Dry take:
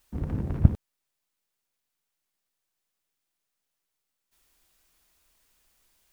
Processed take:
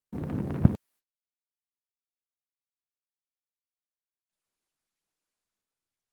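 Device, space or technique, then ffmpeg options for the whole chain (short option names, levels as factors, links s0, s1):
video call: -af "highpass=150,dynaudnorm=f=300:g=5:m=1.78,agate=range=0.0316:threshold=0.00112:ratio=16:detection=peak,volume=1.33" -ar 48000 -c:a libopus -b:a 32k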